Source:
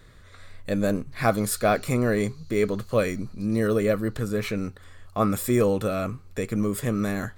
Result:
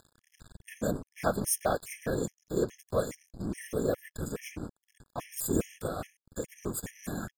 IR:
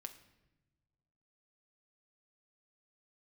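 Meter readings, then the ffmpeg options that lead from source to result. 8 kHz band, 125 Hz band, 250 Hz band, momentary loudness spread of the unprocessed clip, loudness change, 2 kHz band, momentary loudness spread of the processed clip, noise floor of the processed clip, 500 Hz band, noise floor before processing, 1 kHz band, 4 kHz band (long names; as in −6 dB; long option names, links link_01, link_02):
−1.0 dB, −10.5 dB, −10.5 dB, 8 LU, −8.5 dB, −10.5 dB, 13 LU, below −85 dBFS, −8.5 dB, −49 dBFS, −8.5 dB, −8.0 dB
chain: -filter_complex "[0:a]afftfilt=real='hypot(re,im)*cos(2*PI*random(0))':imag='hypot(re,im)*sin(2*PI*random(1))':win_size=512:overlap=0.75,asplit=2[link_01][link_02];[link_02]acompressor=mode=upward:threshold=-31dB:ratio=2.5,volume=2dB[link_03];[link_01][link_03]amix=inputs=2:normalize=0,highshelf=frequency=4600:width_type=q:width=1.5:gain=7.5,aeval=exprs='sgn(val(0))*max(abs(val(0))-0.0188,0)':channel_layout=same,afftfilt=real='re*gt(sin(2*PI*2.4*pts/sr)*(1-2*mod(floor(b*sr/1024/1700),2)),0)':imag='im*gt(sin(2*PI*2.4*pts/sr)*(1-2*mod(floor(b*sr/1024/1700),2)),0)':win_size=1024:overlap=0.75,volume=-6.5dB"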